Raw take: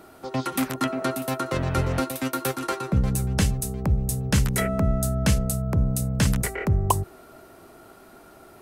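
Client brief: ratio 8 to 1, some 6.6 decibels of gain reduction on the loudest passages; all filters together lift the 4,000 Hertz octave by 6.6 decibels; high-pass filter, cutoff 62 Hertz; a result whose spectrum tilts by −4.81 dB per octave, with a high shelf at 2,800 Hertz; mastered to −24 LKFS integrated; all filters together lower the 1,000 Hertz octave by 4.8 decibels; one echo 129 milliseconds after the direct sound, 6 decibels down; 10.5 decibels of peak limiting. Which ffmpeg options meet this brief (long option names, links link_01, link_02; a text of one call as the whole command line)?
ffmpeg -i in.wav -af "highpass=62,equalizer=frequency=1000:width_type=o:gain=-8,highshelf=frequency=2800:gain=3.5,equalizer=frequency=4000:width_type=o:gain=6,acompressor=threshold=-23dB:ratio=8,alimiter=limit=-19dB:level=0:latency=1,aecho=1:1:129:0.501,volume=5.5dB" out.wav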